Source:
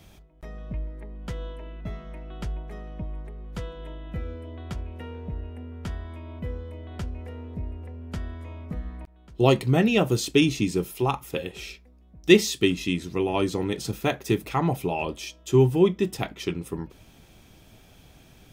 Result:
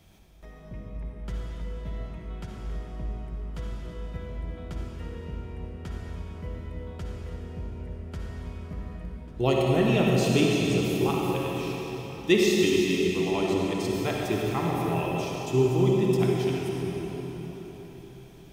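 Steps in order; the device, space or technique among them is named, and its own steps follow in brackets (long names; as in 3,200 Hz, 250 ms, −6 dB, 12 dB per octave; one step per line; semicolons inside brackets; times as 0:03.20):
cathedral (convolution reverb RT60 4.5 s, pre-delay 49 ms, DRR −3 dB)
level −6 dB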